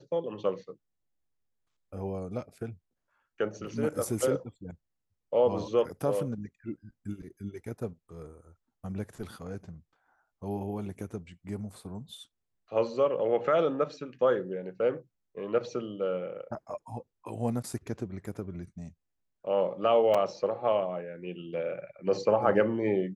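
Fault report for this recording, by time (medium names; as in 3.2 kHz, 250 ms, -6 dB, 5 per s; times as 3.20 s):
20.14–20.15 s: dropout 5.3 ms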